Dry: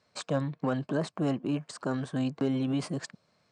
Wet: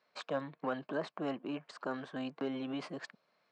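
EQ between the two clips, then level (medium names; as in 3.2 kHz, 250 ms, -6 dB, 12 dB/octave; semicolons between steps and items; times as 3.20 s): band-pass 190–3300 Hz; bass shelf 340 Hz -11.5 dB; -1.5 dB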